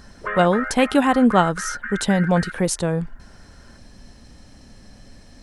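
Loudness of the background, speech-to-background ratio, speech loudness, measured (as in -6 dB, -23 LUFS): -30.5 LUFS, 10.5 dB, -20.0 LUFS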